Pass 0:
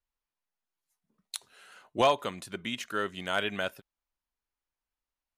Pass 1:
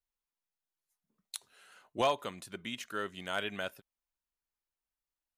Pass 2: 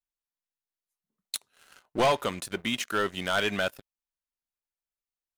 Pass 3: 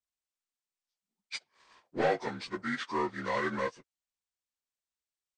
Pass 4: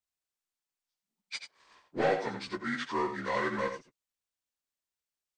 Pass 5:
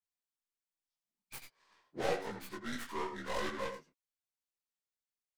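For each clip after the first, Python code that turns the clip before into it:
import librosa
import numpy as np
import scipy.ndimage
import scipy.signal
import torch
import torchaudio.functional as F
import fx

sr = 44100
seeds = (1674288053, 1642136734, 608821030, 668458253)

y1 = fx.high_shelf(x, sr, hz=8100.0, db=4.0)
y1 = y1 * librosa.db_to_amplitude(-5.5)
y2 = fx.leveller(y1, sr, passes=3)
y3 = fx.partial_stretch(y2, sr, pct=80)
y3 = y3 * librosa.db_to_amplitude(-3.0)
y4 = y3 + 10.0 ** (-8.5 / 20.0) * np.pad(y3, (int(86 * sr / 1000.0), 0))[:len(y3)]
y5 = fx.tracing_dist(y4, sr, depth_ms=0.39)
y5 = fx.detune_double(y5, sr, cents=30)
y5 = y5 * librosa.db_to_amplitude(-3.5)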